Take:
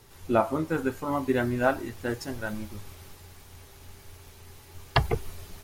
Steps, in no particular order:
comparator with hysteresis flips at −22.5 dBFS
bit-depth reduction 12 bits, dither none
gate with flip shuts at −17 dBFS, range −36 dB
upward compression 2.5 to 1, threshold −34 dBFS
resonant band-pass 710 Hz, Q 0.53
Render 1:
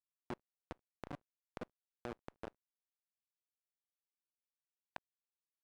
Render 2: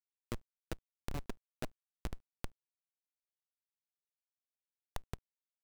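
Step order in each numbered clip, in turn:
gate with flip, then comparator with hysteresis, then bit-depth reduction, then upward compression, then resonant band-pass
resonant band-pass, then gate with flip, then comparator with hysteresis, then bit-depth reduction, then upward compression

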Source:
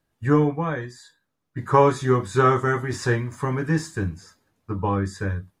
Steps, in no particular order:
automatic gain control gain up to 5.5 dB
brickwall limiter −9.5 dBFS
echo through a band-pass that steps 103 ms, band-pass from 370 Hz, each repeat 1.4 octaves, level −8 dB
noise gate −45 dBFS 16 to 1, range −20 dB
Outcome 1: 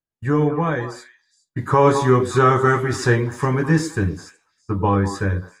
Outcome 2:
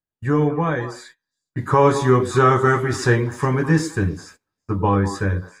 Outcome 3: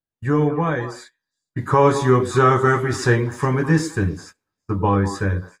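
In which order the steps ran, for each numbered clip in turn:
noise gate, then echo through a band-pass that steps, then brickwall limiter, then automatic gain control
brickwall limiter, then automatic gain control, then echo through a band-pass that steps, then noise gate
brickwall limiter, then echo through a band-pass that steps, then noise gate, then automatic gain control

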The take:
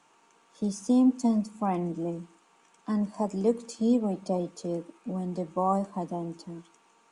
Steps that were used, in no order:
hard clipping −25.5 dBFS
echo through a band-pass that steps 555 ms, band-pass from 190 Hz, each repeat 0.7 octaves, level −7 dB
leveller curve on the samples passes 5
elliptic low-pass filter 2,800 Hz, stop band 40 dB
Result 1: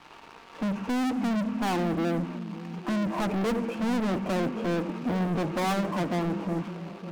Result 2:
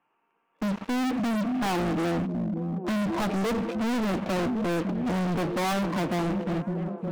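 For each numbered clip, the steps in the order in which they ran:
elliptic low-pass filter, then hard clipping, then leveller curve on the samples, then echo through a band-pass that steps
elliptic low-pass filter, then leveller curve on the samples, then echo through a band-pass that steps, then hard clipping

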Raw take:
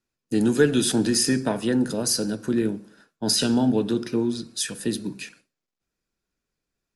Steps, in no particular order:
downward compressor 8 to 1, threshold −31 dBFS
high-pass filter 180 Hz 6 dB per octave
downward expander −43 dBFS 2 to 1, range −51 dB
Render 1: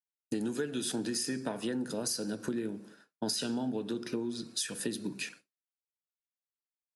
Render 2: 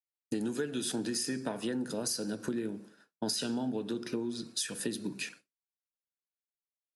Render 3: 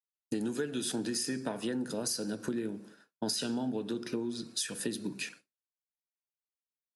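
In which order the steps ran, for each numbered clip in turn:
downward expander, then high-pass filter, then downward compressor
high-pass filter, then downward compressor, then downward expander
high-pass filter, then downward expander, then downward compressor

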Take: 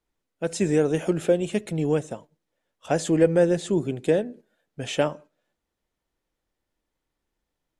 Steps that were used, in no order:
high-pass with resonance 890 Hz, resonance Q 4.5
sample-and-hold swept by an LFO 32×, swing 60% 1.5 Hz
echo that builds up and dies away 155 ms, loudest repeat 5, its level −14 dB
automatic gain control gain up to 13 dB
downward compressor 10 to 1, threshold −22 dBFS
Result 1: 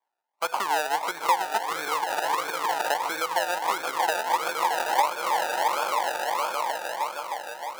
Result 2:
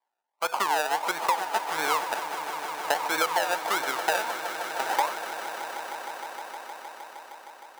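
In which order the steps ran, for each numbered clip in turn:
automatic gain control, then echo that builds up and dies away, then sample-and-hold swept by an LFO, then downward compressor, then high-pass with resonance
sample-and-hold swept by an LFO, then high-pass with resonance, then automatic gain control, then downward compressor, then echo that builds up and dies away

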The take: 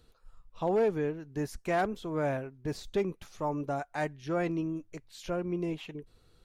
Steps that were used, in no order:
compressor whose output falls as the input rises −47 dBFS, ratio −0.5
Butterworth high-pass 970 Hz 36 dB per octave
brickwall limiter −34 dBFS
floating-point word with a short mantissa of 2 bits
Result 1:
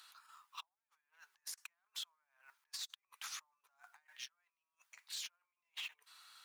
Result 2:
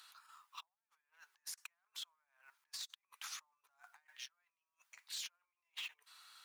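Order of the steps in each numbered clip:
compressor whose output falls as the input rises, then Butterworth high-pass, then floating-point word with a short mantissa, then brickwall limiter
compressor whose output falls as the input rises, then brickwall limiter, then Butterworth high-pass, then floating-point word with a short mantissa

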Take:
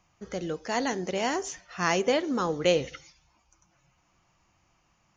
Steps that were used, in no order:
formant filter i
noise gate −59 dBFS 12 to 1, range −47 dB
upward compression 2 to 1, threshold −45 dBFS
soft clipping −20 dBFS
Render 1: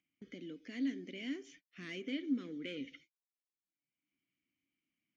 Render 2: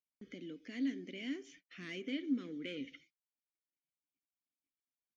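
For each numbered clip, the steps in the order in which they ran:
soft clipping, then formant filter, then noise gate, then upward compression
soft clipping, then formant filter, then upward compression, then noise gate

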